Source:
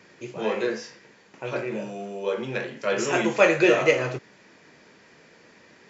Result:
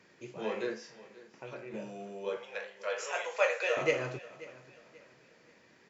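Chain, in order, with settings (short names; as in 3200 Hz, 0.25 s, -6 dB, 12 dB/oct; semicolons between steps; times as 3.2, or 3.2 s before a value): 0.73–1.74 compressor 6:1, threshold -32 dBFS, peak gain reduction 9 dB; 2.37–3.77 elliptic high-pass 480 Hz, stop band 40 dB; feedback echo 0.535 s, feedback 34%, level -19 dB; gain -9 dB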